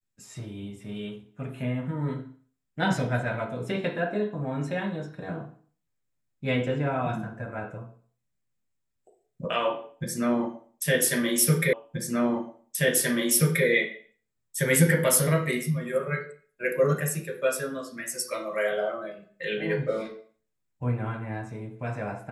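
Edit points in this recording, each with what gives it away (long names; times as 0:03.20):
0:11.73: the same again, the last 1.93 s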